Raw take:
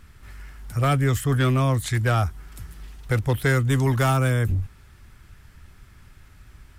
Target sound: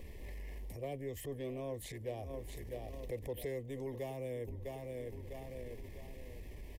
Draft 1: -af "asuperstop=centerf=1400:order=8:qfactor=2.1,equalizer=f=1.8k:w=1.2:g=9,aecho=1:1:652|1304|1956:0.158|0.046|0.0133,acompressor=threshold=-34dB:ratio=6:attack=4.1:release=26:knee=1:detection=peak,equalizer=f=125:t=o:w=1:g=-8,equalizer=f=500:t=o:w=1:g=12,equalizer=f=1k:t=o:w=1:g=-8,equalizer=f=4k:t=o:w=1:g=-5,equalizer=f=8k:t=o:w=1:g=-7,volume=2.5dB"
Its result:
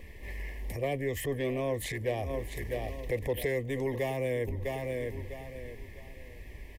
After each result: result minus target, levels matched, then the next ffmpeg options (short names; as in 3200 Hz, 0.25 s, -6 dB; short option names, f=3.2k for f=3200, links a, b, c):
compressor: peak gain reduction -8.5 dB; 2000 Hz band +5.5 dB
-af "asuperstop=centerf=1400:order=8:qfactor=2.1,equalizer=f=1.8k:w=1.2:g=9,aecho=1:1:652|1304|1956:0.158|0.046|0.0133,acompressor=threshold=-45.5dB:ratio=6:attack=4.1:release=26:knee=1:detection=peak,equalizer=f=125:t=o:w=1:g=-8,equalizer=f=500:t=o:w=1:g=12,equalizer=f=1k:t=o:w=1:g=-8,equalizer=f=4k:t=o:w=1:g=-5,equalizer=f=8k:t=o:w=1:g=-7,volume=2.5dB"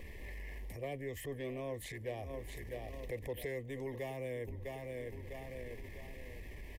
2000 Hz band +6.5 dB
-af "asuperstop=centerf=1400:order=8:qfactor=2.1,aecho=1:1:652|1304|1956:0.158|0.046|0.0133,acompressor=threshold=-45.5dB:ratio=6:attack=4.1:release=26:knee=1:detection=peak,equalizer=f=125:t=o:w=1:g=-8,equalizer=f=500:t=o:w=1:g=12,equalizer=f=1k:t=o:w=1:g=-8,equalizer=f=4k:t=o:w=1:g=-5,equalizer=f=8k:t=o:w=1:g=-7,volume=2.5dB"